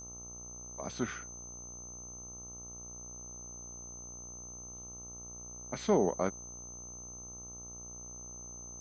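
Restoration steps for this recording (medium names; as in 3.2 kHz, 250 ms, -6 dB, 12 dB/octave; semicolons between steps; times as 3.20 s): de-hum 60.4 Hz, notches 22; band-stop 6.2 kHz, Q 30; expander -39 dBFS, range -21 dB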